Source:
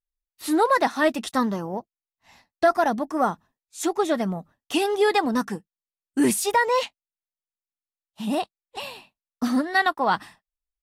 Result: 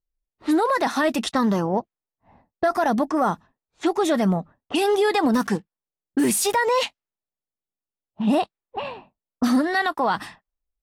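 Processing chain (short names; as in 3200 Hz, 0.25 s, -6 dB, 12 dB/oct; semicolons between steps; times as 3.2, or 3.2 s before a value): 5.34–6.56 block floating point 5-bit; low-pass opened by the level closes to 590 Hz, open at -21.5 dBFS; 8.22–8.85 high shelf 3600 Hz -8 dB; limiter -20.5 dBFS, peak gain reduction 11 dB; gain +7.5 dB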